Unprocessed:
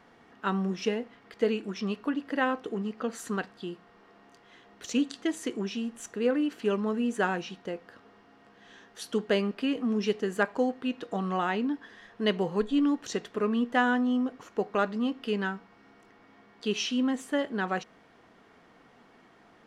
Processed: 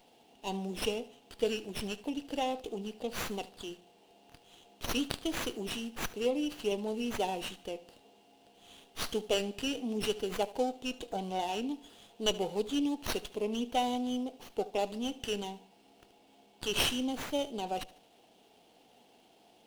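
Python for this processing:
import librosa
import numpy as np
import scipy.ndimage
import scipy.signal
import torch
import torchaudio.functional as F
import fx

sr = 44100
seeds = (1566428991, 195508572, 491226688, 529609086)

y = scipy.signal.sosfilt(scipy.signal.cheby1(3, 1.0, [840.0, 2700.0], 'bandstop', fs=sr, output='sos'), x)
y = fx.riaa(y, sr, side='recording')
y = fx.echo_feedback(y, sr, ms=74, feedback_pct=43, wet_db=-19.0)
y = fx.running_max(y, sr, window=5)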